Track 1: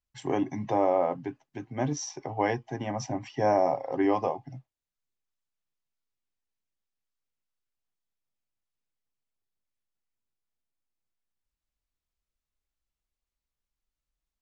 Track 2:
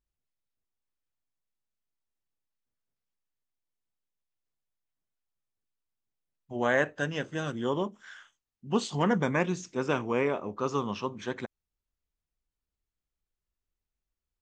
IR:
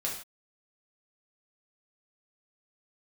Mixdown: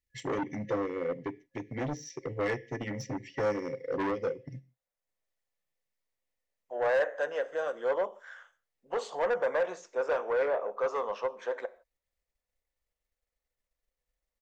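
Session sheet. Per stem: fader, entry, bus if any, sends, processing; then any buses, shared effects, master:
−1.0 dB, 0.00 s, send −19 dB, de-essing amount 95%; brick-wall band-stop 530–1,700 Hz; transient designer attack +3 dB, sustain −6 dB
−10.0 dB, 0.20 s, send −17 dB, high-pass with resonance 510 Hz, resonance Q 3.7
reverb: on, pre-delay 3 ms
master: soft clipping −30.5 dBFS, distortion −7 dB; flat-topped bell 1,000 Hz +8.5 dB 2.3 octaves

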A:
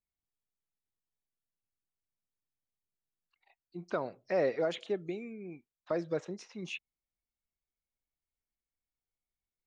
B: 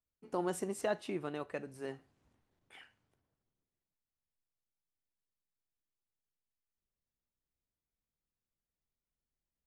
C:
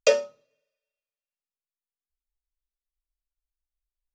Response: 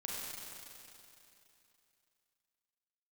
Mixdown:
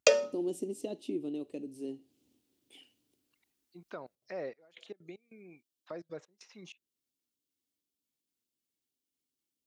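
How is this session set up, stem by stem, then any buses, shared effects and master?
−10.0 dB, 0.00 s, no send, gate pattern "xx...xx.xx..xx" 192 BPM −24 dB
−5.0 dB, 0.00 s, no send, drawn EQ curve 180 Hz 0 dB, 280 Hz +14 dB, 1,600 Hz −25 dB, 2,900 Hz +1 dB
+3.0 dB, 0.00 s, no send, downward compressor 6 to 1, threshold −22 dBFS, peak gain reduction 9 dB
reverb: not used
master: high-pass filter 100 Hz 12 dB per octave; one half of a high-frequency compander encoder only

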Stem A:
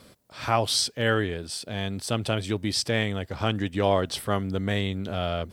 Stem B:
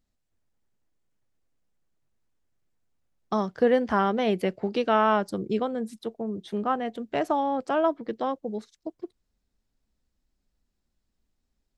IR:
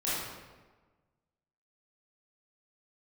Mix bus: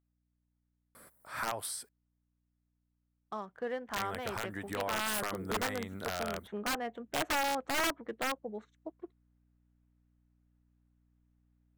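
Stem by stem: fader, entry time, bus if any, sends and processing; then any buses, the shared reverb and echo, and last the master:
−3.0 dB, 0.95 s, muted 0:01.89–0:03.96, no send, high-shelf EQ 5,500 Hz +10 dB; downward compressor 10 to 1, threshold −27 dBFS, peak gain reduction 12 dB; flat-topped bell 4,200 Hz −13.5 dB
0:05.06 −13 dB → 0:05.30 −4.5 dB, 0.00 s, no send, adaptive Wiener filter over 9 samples; mains hum 60 Hz, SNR 29 dB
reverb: not used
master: low-shelf EQ 440 Hz −8.5 dB; wrap-around overflow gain 27.5 dB; parametric band 1,300 Hz +5 dB 1.5 octaves

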